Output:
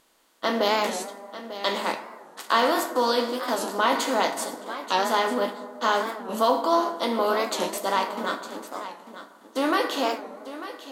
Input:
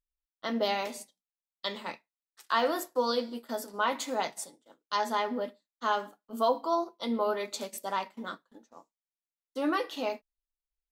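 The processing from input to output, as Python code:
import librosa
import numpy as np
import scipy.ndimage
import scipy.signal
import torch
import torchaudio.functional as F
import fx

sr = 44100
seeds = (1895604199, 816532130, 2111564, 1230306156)

p1 = fx.bin_compress(x, sr, power=0.6)
p2 = fx.low_shelf(p1, sr, hz=150.0, db=-5.0)
p3 = fx.doubler(p2, sr, ms=15.0, db=-12.0)
p4 = p3 + fx.echo_single(p3, sr, ms=895, db=-13.5, dry=0)
p5 = fx.rev_plate(p4, sr, seeds[0], rt60_s=1.9, hf_ratio=0.35, predelay_ms=0, drr_db=10.0)
p6 = fx.record_warp(p5, sr, rpm=45.0, depth_cents=160.0)
y = p6 * 10.0 ** (3.5 / 20.0)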